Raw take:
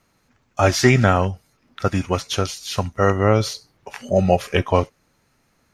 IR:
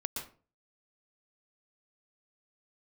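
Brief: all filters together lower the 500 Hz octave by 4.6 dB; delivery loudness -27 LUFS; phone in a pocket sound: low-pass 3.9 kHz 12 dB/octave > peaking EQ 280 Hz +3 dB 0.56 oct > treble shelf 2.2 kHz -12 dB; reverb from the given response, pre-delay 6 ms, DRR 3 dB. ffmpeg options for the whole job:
-filter_complex "[0:a]equalizer=f=500:t=o:g=-5.5,asplit=2[s0][s1];[1:a]atrim=start_sample=2205,adelay=6[s2];[s1][s2]afir=irnorm=-1:irlink=0,volume=0.596[s3];[s0][s3]amix=inputs=2:normalize=0,lowpass=3900,equalizer=f=280:t=o:w=0.56:g=3,highshelf=f=2200:g=-12,volume=0.501"

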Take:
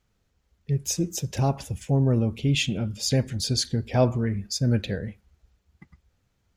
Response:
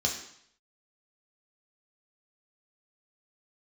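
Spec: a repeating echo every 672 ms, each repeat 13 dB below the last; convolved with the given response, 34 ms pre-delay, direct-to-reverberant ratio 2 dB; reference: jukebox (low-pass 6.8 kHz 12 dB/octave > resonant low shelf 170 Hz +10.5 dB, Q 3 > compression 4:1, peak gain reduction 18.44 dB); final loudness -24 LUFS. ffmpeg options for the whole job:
-filter_complex "[0:a]aecho=1:1:672|1344|2016:0.224|0.0493|0.0108,asplit=2[s0][s1];[1:a]atrim=start_sample=2205,adelay=34[s2];[s1][s2]afir=irnorm=-1:irlink=0,volume=0.355[s3];[s0][s3]amix=inputs=2:normalize=0,lowpass=6800,lowshelf=f=170:t=q:w=3:g=10.5,acompressor=threshold=0.1:ratio=4,volume=0.841"

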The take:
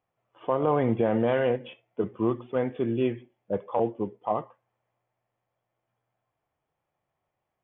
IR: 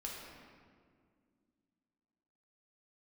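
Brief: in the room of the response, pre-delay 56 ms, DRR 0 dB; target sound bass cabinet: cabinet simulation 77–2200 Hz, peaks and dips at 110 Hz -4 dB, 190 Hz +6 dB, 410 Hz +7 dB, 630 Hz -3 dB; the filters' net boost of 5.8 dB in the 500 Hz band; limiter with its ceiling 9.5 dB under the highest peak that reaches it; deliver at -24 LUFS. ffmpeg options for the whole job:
-filter_complex "[0:a]equalizer=f=500:t=o:g=3.5,alimiter=limit=0.0944:level=0:latency=1,asplit=2[s0][s1];[1:a]atrim=start_sample=2205,adelay=56[s2];[s1][s2]afir=irnorm=-1:irlink=0,volume=1.06[s3];[s0][s3]amix=inputs=2:normalize=0,highpass=f=77:w=0.5412,highpass=f=77:w=1.3066,equalizer=f=110:t=q:w=4:g=-4,equalizer=f=190:t=q:w=4:g=6,equalizer=f=410:t=q:w=4:g=7,equalizer=f=630:t=q:w=4:g=-3,lowpass=f=2200:w=0.5412,lowpass=f=2200:w=1.3066,volume=1.26"

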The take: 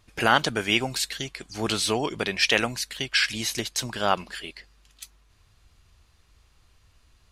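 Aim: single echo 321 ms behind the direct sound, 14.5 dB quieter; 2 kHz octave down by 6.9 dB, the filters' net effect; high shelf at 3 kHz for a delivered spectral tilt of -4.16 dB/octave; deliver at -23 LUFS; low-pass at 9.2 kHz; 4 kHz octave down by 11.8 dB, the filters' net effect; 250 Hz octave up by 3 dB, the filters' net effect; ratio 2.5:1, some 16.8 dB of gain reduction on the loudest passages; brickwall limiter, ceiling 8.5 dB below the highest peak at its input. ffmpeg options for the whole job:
-af "lowpass=9200,equalizer=f=250:t=o:g=4,equalizer=f=2000:t=o:g=-4.5,highshelf=f=3000:g=-7.5,equalizer=f=4000:t=o:g=-8.5,acompressor=threshold=0.00708:ratio=2.5,alimiter=level_in=2.66:limit=0.0631:level=0:latency=1,volume=0.376,aecho=1:1:321:0.188,volume=12.6"

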